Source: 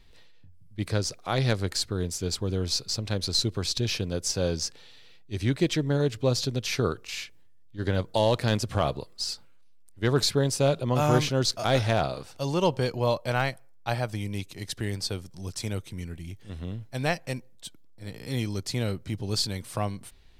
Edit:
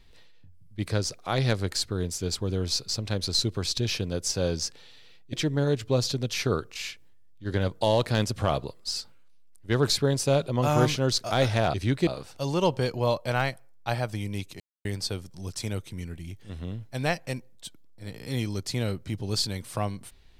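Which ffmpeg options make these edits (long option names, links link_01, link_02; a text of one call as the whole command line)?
ffmpeg -i in.wav -filter_complex "[0:a]asplit=6[link_01][link_02][link_03][link_04][link_05][link_06];[link_01]atrim=end=5.332[link_07];[link_02]atrim=start=5.658:end=12.072[link_08];[link_03]atrim=start=5.328:end=5.662[link_09];[link_04]atrim=start=12.068:end=14.6,asetpts=PTS-STARTPTS,afade=type=out:start_time=2.528:duration=0.004:curve=hsin[link_10];[link_05]atrim=start=14.6:end=14.85,asetpts=PTS-STARTPTS,volume=0[link_11];[link_06]atrim=start=14.85,asetpts=PTS-STARTPTS,afade=type=in:duration=0.004:curve=hsin[link_12];[link_07][link_08]acrossfade=duration=0.004:curve1=hsin:curve2=hsin[link_13];[link_13][link_09]acrossfade=duration=0.004:curve1=hsin:curve2=hsin[link_14];[link_10][link_11][link_12]concat=n=3:v=0:a=1[link_15];[link_14][link_15]acrossfade=duration=0.004:curve1=hsin:curve2=hsin" out.wav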